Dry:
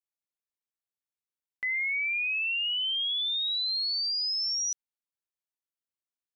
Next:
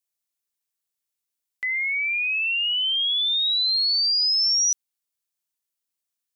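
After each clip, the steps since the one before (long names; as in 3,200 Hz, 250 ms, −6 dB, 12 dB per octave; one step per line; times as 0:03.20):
high-shelf EQ 3,300 Hz +11 dB
level +1 dB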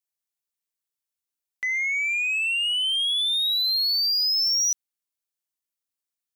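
leveller curve on the samples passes 1
level −2.5 dB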